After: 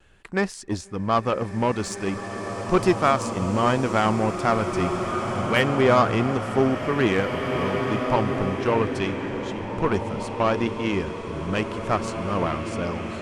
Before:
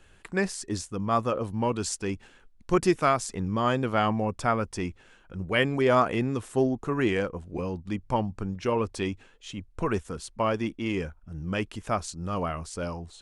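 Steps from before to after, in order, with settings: high shelf 6400 Hz -7.5 dB; in parallel at 0 dB: limiter -19 dBFS, peak gain reduction 9 dB; on the sum: added harmonics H 6 -34 dB, 7 -24 dB, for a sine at -7 dBFS; vibrato 0.78 Hz 23 cents; bloom reverb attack 2.08 s, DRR 4 dB

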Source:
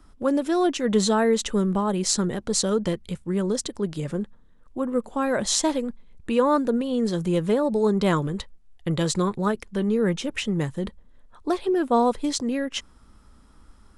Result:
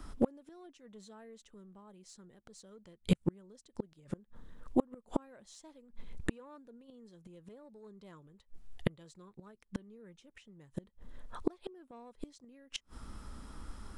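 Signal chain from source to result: soft clip -12 dBFS, distortion -23 dB; flipped gate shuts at -21 dBFS, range -37 dB; gain +5.5 dB

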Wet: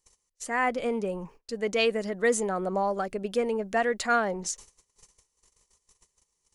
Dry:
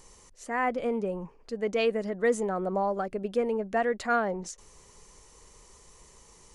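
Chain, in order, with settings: gate -50 dBFS, range -29 dB; high shelf 2400 Hz +10 dB

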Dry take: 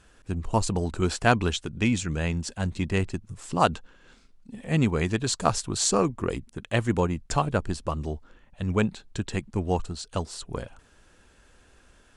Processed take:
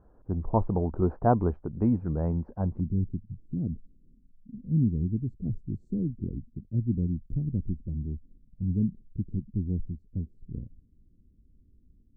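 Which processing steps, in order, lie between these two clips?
inverse Chebyshev low-pass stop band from 3200 Hz, stop band 60 dB, from 2.79 s stop band from 900 Hz

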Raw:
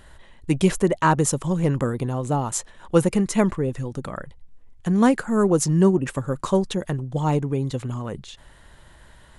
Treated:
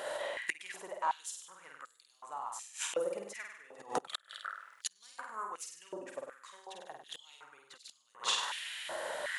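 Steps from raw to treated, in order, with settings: flutter echo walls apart 8.5 m, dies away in 0.7 s; soft clip -6.5 dBFS, distortion -23 dB; flipped gate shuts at -19 dBFS, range -29 dB; stepped high-pass 2.7 Hz 570–4500 Hz; gain +9 dB

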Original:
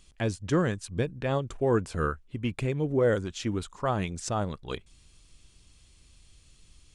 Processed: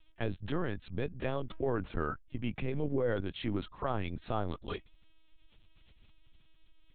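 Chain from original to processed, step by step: limiter -22 dBFS, peak gain reduction 7.5 dB; LPC vocoder at 8 kHz pitch kept; gain -2 dB

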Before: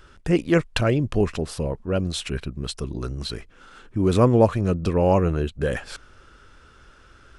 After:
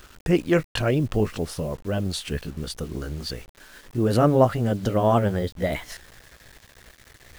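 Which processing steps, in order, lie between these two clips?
gliding pitch shift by +4.5 st starting unshifted; requantised 8-bit, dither none

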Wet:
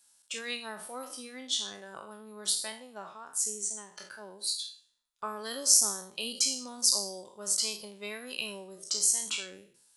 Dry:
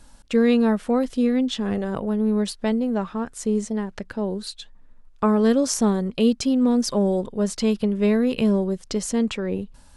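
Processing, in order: spectral trails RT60 0.61 s; differentiator; spectral noise reduction 10 dB; gain +3.5 dB

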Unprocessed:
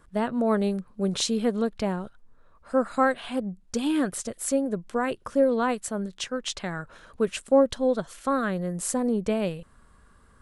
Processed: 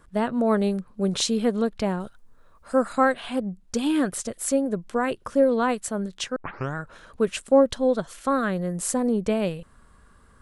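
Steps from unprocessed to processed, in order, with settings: 2–2.93 high shelf 5500 Hz +9.5 dB; 6.36 tape start 0.40 s; gain +2 dB

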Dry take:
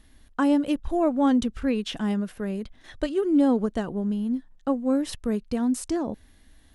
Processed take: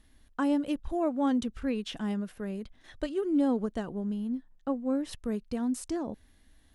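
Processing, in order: 0.92–1.48 HPF 76 Hz 6 dB/oct; 4.27–5.11 high shelf 4200 Hz -6.5 dB; gain -6 dB

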